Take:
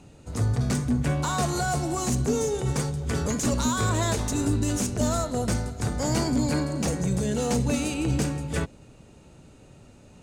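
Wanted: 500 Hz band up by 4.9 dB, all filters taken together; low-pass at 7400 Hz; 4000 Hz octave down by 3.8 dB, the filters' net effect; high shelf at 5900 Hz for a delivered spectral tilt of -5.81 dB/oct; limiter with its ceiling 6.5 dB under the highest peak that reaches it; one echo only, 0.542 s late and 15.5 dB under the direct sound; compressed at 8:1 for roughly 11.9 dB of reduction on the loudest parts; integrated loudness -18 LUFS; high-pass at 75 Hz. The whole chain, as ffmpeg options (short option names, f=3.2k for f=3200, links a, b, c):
-af "highpass=75,lowpass=7.4k,equalizer=f=500:t=o:g=6,equalizer=f=4k:t=o:g=-3,highshelf=f=5.9k:g=-3.5,acompressor=threshold=-31dB:ratio=8,alimiter=level_in=3dB:limit=-24dB:level=0:latency=1,volume=-3dB,aecho=1:1:542:0.168,volume=18dB"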